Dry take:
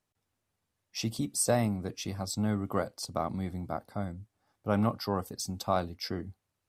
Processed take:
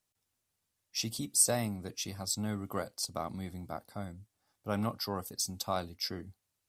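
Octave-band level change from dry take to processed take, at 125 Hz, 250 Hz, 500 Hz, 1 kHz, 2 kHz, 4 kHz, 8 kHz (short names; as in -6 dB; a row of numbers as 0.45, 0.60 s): -6.0, -6.0, -5.5, -5.0, -2.5, +2.5, +4.0 dB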